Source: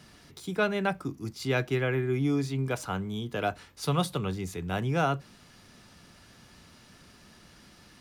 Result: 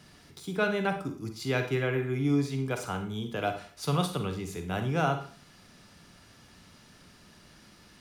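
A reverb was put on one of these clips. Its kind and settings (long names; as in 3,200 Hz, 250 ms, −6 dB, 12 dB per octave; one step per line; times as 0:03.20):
four-comb reverb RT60 0.43 s, DRR 6.5 dB
level −1.5 dB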